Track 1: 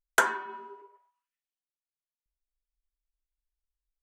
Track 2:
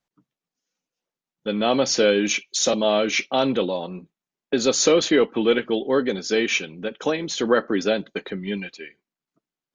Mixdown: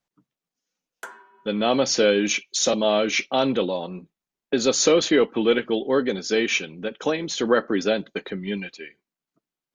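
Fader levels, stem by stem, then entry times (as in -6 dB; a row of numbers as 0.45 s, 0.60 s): -15.0 dB, -0.5 dB; 0.85 s, 0.00 s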